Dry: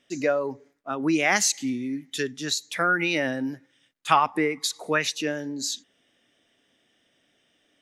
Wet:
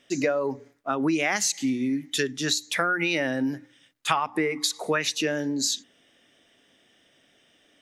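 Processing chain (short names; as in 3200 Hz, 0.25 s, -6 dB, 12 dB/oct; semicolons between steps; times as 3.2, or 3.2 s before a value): notches 60/120/180/240/300 Hz; compressor 5:1, threshold -27 dBFS, peak gain reduction 12.5 dB; gain +5.5 dB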